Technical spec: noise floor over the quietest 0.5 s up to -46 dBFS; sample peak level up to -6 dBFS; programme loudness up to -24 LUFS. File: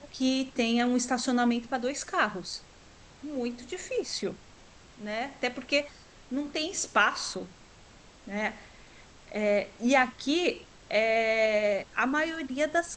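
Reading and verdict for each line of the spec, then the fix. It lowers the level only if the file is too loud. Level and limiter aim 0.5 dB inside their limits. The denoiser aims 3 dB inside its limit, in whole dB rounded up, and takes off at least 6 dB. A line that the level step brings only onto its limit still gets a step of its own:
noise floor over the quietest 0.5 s -54 dBFS: pass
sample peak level -10.0 dBFS: pass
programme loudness -29.0 LUFS: pass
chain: none needed

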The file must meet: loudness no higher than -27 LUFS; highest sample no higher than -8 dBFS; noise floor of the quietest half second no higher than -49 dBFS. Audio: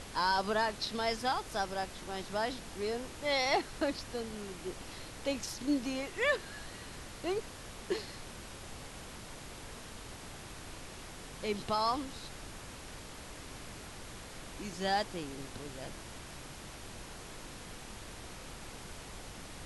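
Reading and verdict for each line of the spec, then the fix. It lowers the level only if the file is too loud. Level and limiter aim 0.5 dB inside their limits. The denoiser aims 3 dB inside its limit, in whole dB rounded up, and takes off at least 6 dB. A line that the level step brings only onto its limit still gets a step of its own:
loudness -38.0 LUFS: pass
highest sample -18.0 dBFS: pass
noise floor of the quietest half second -47 dBFS: fail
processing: noise reduction 6 dB, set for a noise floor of -47 dBFS

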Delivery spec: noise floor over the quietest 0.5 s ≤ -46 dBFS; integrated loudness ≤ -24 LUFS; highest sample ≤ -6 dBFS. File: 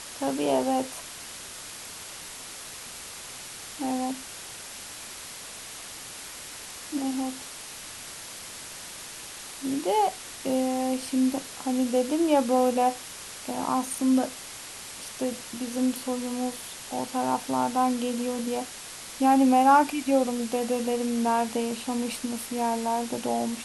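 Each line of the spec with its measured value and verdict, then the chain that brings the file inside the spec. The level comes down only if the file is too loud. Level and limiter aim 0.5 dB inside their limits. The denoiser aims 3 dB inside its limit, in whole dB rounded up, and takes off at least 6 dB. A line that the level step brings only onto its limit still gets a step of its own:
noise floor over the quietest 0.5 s -41 dBFS: fail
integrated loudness -28.5 LUFS: pass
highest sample -8.5 dBFS: pass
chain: noise reduction 8 dB, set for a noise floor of -41 dBFS

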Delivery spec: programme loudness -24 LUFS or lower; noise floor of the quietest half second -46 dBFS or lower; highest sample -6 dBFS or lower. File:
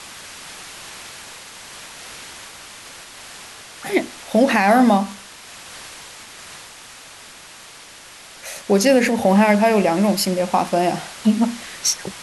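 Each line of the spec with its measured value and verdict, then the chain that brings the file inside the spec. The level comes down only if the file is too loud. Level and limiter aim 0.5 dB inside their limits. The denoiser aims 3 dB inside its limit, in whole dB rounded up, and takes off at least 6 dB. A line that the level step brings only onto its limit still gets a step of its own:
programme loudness -17.5 LUFS: fail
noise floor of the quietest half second -42 dBFS: fail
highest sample -5.5 dBFS: fail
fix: trim -7 dB

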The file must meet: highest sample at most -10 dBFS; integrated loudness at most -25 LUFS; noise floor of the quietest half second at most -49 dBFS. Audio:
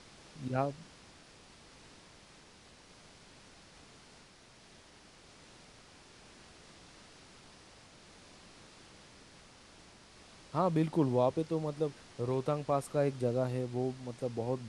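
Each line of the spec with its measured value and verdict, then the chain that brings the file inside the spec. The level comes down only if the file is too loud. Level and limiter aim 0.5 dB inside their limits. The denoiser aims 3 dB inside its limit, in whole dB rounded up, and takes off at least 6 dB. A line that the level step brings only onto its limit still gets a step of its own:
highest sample -16.5 dBFS: pass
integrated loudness -34.0 LUFS: pass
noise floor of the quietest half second -59 dBFS: pass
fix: none needed

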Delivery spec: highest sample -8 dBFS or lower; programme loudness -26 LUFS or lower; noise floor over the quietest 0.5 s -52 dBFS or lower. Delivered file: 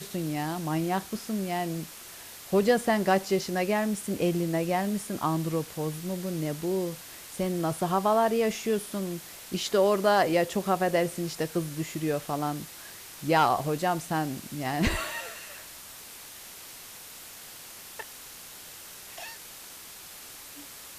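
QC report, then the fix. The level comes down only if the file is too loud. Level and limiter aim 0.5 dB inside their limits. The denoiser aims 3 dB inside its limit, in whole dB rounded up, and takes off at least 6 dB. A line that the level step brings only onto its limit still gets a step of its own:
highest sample -11.0 dBFS: pass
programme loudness -28.0 LUFS: pass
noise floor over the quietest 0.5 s -45 dBFS: fail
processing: noise reduction 10 dB, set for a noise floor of -45 dBFS

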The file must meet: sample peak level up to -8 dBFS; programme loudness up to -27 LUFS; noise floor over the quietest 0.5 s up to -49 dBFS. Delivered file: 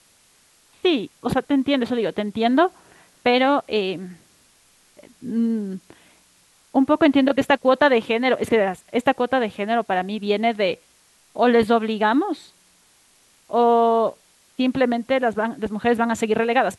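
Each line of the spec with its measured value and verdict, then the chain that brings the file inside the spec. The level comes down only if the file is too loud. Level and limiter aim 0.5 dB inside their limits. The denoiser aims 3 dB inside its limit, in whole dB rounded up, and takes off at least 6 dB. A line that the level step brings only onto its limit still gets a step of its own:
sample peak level -5.5 dBFS: fail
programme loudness -20.5 LUFS: fail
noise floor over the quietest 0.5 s -57 dBFS: pass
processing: trim -7 dB

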